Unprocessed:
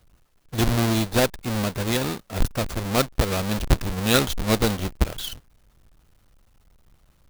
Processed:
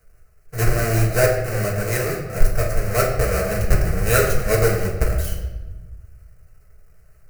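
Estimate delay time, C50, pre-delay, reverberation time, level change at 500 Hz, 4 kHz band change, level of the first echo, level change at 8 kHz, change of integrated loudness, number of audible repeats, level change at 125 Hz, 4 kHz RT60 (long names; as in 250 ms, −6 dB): no echo audible, 4.5 dB, 4 ms, 1.2 s, +6.0 dB, −7.0 dB, no echo audible, +2.5 dB, +3.0 dB, no echo audible, +5.0 dB, 0.80 s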